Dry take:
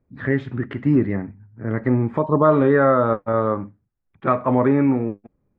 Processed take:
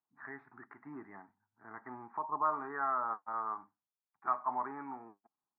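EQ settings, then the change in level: ladder band-pass 960 Hz, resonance 45%; tilt -1.5 dB/oct; fixed phaser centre 1300 Hz, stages 4; 0.0 dB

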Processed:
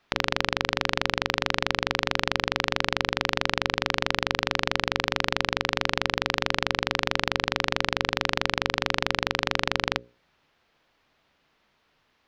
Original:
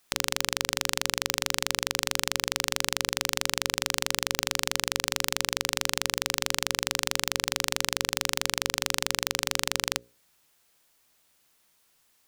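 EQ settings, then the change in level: air absorption 280 m; +7.5 dB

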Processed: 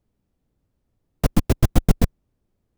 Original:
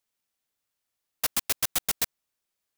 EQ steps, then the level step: tilt -2 dB/oct; tilt shelf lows +7.5 dB, about 730 Hz; low shelf 490 Hz +10 dB; +6.0 dB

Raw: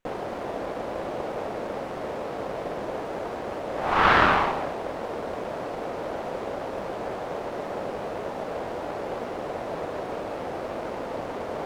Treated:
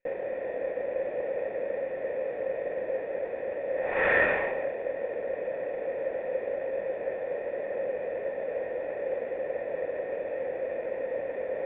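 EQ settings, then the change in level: vocal tract filter e; high shelf 2400 Hz +11.5 dB; notch 1200 Hz, Q 8.8; +6.5 dB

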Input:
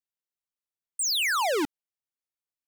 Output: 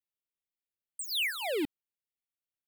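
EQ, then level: bell 1500 Hz -7.5 dB 0.42 oct; fixed phaser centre 2600 Hz, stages 4; -2.5 dB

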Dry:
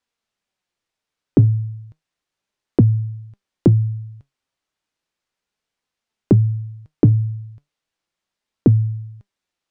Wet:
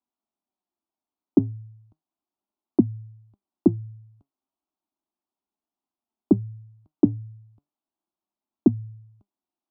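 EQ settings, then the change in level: band-pass 330 Hz, Q 0.54; fixed phaser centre 490 Hz, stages 6; 0.0 dB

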